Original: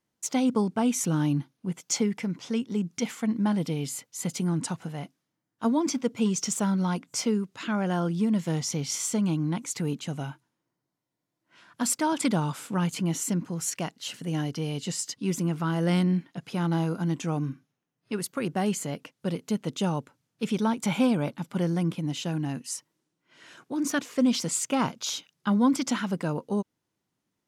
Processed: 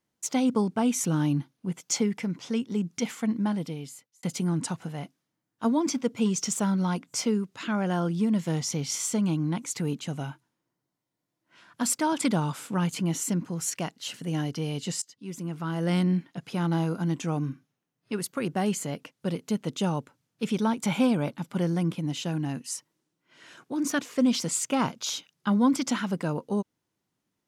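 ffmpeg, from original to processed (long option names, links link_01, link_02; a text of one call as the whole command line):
ffmpeg -i in.wav -filter_complex "[0:a]asplit=3[link_01][link_02][link_03];[link_01]atrim=end=4.23,asetpts=PTS-STARTPTS,afade=type=out:start_time=3.28:duration=0.95[link_04];[link_02]atrim=start=4.23:end=15.02,asetpts=PTS-STARTPTS,afade=type=in:duration=0.004:curve=hsin,afade=type=out:start_time=10.786:duration=0.004:curve=hsin:silence=0.0891251[link_05];[link_03]atrim=start=15.02,asetpts=PTS-STARTPTS,afade=type=in:duration=1.07:silence=0.0891251[link_06];[link_04][link_05][link_06]concat=n=3:v=0:a=1" out.wav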